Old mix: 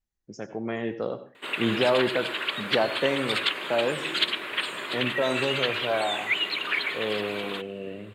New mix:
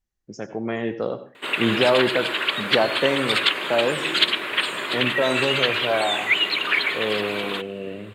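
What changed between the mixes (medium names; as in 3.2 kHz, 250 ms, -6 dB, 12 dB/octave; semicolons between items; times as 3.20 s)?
speech +4.0 dB; background +6.0 dB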